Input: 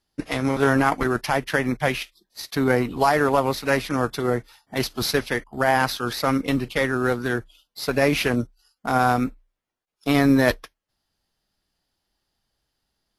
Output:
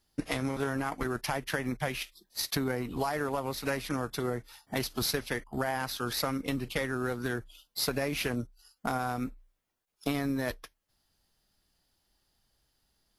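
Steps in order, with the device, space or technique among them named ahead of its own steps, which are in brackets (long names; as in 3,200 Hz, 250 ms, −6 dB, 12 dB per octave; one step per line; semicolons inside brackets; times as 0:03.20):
ASMR close-microphone chain (low-shelf EQ 130 Hz +4 dB; downward compressor 6 to 1, threshold −29 dBFS, peak gain reduction 16 dB; high-shelf EQ 7,200 Hz +7 dB)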